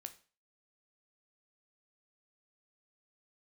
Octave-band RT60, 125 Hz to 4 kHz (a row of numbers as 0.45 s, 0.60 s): 0.40 s, 0.35 s, 0.40 s, 0.40 s, 0.35 s, 0.35 s